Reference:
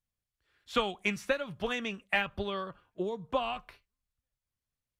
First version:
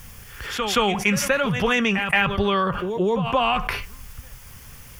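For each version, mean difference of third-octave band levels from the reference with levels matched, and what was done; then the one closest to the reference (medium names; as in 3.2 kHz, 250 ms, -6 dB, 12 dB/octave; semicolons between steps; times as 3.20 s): 7.0 dB: graphic EQ with 31 bands 315 Hz -9 dB, 630 Hz -7 dB, 4 kHz -11 dB, 8 kHz -5 dB; on a send: reverse echo 175 ms -19.5 dB; on the sum: level flattener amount 70%; trim +8 dB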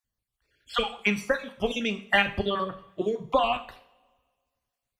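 4.5 dB: random holes in the spectrogram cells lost 39%; gain riding 2 s; two-slope reverb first 0.49 s, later 1.7 s, from -22 dB, DRR 8 dB; trim +7 dB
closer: second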